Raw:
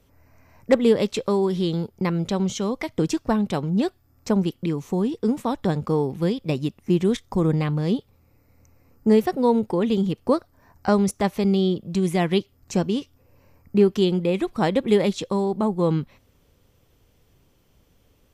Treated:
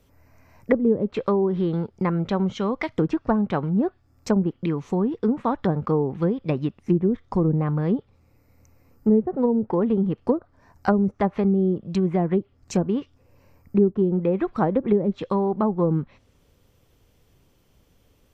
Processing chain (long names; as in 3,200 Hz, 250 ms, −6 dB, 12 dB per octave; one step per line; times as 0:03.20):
treble cut that deepens with the level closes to 390 Hz, closed at −15 dBFS
dynamic equaliser 1,400 Hz, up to +6 dB, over −44 dBFS, Q 1.1